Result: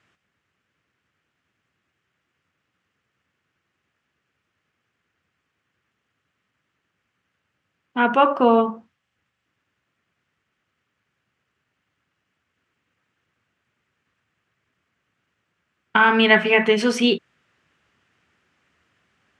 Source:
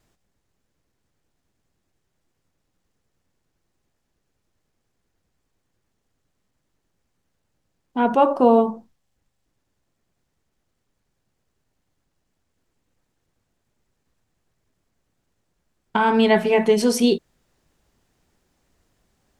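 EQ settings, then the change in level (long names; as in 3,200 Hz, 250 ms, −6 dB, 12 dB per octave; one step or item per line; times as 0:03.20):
high-pass filter 79 Hz 24 dB per octave
low-pass filter 6,500 Hz 12 dB per octave
flat-topped bell 1,900 Hz +11 dB
−1.5 dB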